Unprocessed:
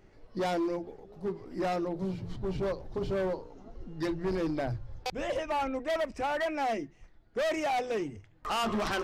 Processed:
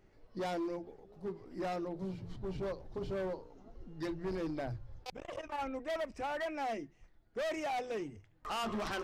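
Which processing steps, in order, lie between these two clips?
5.03–5.59 core saturation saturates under 350 Hz; gain -6.5 dB

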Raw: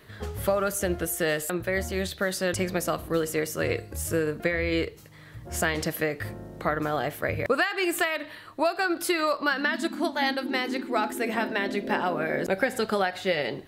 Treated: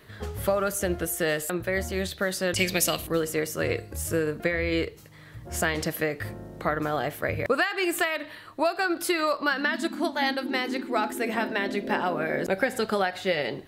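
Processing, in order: 2.56–3.07 resonant high shelf 1900 Hz +10 dB, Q 1.5

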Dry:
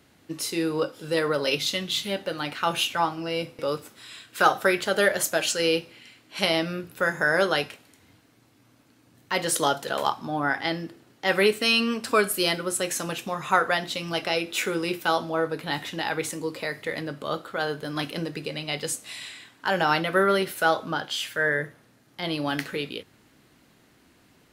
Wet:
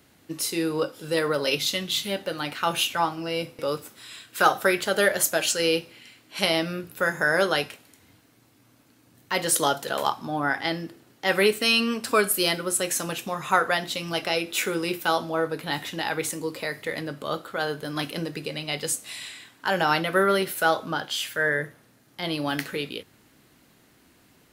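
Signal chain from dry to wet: high shelf 10000 Hz +8 dB

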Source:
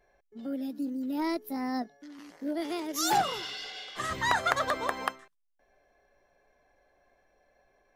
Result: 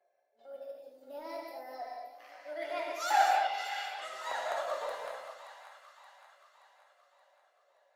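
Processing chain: 2.2–3.89 bell 2000 Hz +14.5 dB 1.7 oct; transient shaper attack -10 dB, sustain +2 dB; phaser 0.36 Hz, delay 4.2 ms, feedback 36%; ladder high-pass 530 Hz, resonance 65%; transient shaper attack +6 dB, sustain -10 dB; flange 1.2 Hz, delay 5.2 ms, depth 4 ms, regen +57%; split-band echo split 920 Hz, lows 0.16 s, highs 0.575 s, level -11 dB; non-linear reverb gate 0.27 s flat, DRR -1.5 dB

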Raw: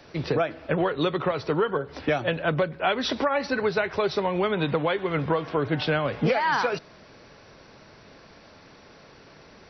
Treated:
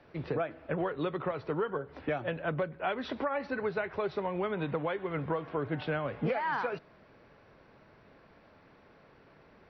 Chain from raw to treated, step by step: LPF 2400 Hz 12 dB/oct; gain -8 dB

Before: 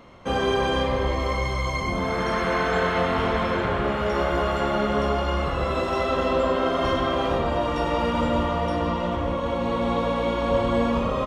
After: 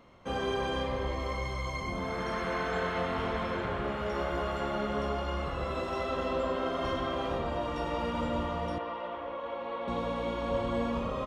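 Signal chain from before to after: 8.78–9.88 three-band isolator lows -20 dB, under 360 Hz, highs -23 dB, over 3800 Hz; gain -9 dB

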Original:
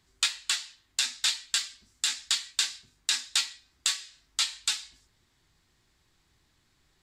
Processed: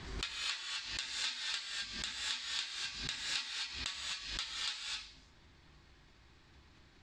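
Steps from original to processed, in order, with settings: air absorption 140 m; compressor 3:1, threshold -46 dBFS, peak gain reduction 15.5 dB; non-linear reverb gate 0.28 s rising, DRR -3 dB; backwards sustainer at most 57 dB/s; gain +3 dB

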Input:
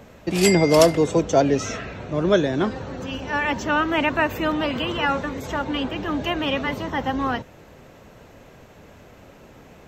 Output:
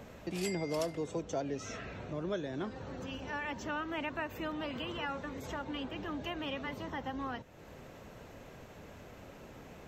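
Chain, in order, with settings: compressor 2:1, threshold -41 dBFS, peak gain reduction 17 dB; gain -4 dB

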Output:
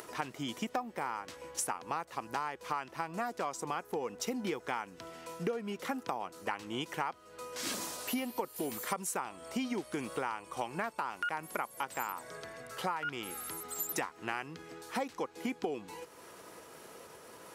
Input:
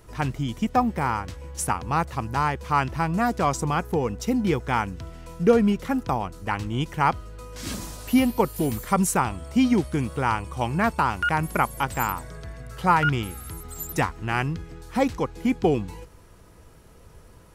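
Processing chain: upward compressor, threshold -37 dBFS; HPF 360 Hz 12 dB/oct; compressor 10:1, threshold -32 dBFS, peak gain reduction 18.5 dB

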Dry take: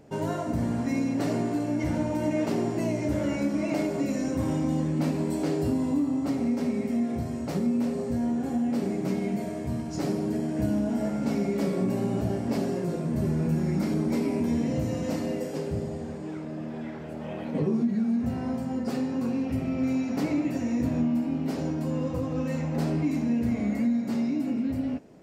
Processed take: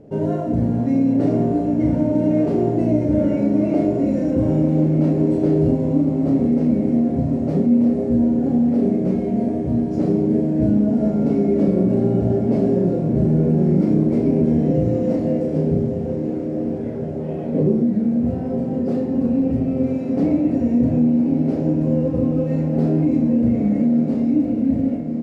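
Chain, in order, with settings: CVSD 64 kbps; doubler 33 ms -5.5 dB; in parallel at -2 dB: negative-ratio compressor -24 dBFS; on the sum: LPF 1600 Hz 6 dB/oct; resonant low shelf 730 Hz +8.5 dB, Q 1.5; on a send: diffused feedback echo 1.169 s, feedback 56%, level -8.5 dB; on the sum: gain -6.5 dB

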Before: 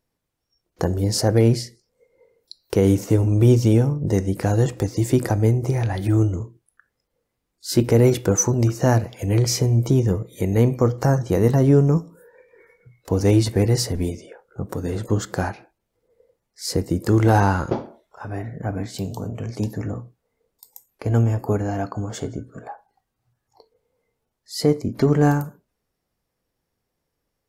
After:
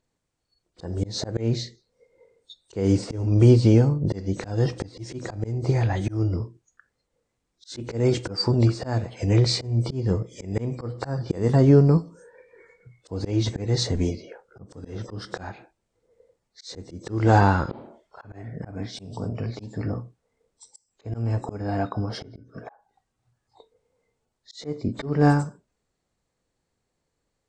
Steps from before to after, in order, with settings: nonlinear frequency compression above 2800 Hz 1.5:1; auto swell 0.256 s

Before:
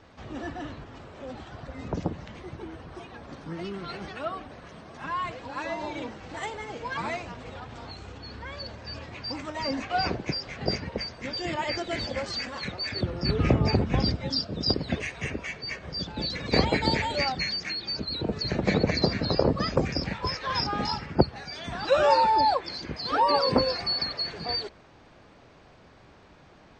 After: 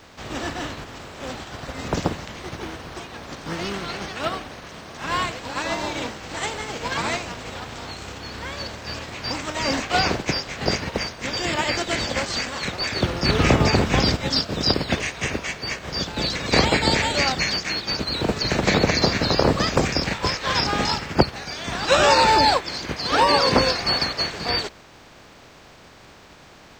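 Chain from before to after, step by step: spectral contrast lowered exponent 0.6; in parallel at -1 dB: limiter -15.5 dBFS, peak gain reduction 11 dB; on the sum: vibrato 10 Hz 5.2 cents; gain +1 dB

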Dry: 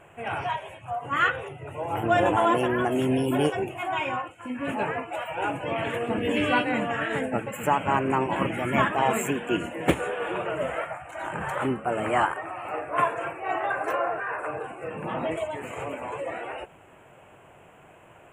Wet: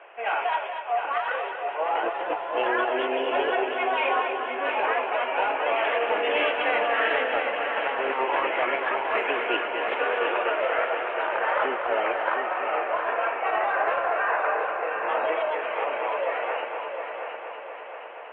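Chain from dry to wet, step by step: HPF 470 Hz 24 dB/oct; in parallel at -5.5 dB: hard clip -24 dBFS, distortion -9 dB; on the sum: steep low-pass 3300 Hz 36 dB/oct; negative-ratio compressor -25 dBFS, ratio -0.5; on a send: multi-head echo 0.238 s, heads first and third, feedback 66%, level -8 dB

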